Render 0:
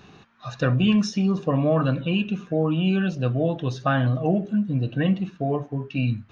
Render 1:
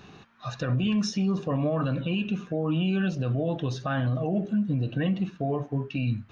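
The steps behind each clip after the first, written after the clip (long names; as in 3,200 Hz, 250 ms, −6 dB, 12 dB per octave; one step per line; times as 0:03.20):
brickwall limiter −19 dBFS, peak gain reduction 10.5 dB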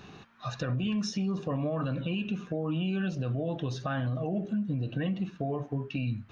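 downward compressor 2 to 1, threshold −31 dBFS, peak gain reduction 5.5 dB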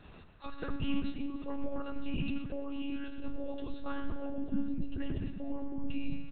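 repeating echo 111 ms, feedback 53%, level −9 dB
on a send at −11 dB: convolution reverb RT60 0.45 s, pre-delay 3 ms
on the sum: one-pitch LPC vocoder at 8 kHz 280 Hz
level −5.5 dB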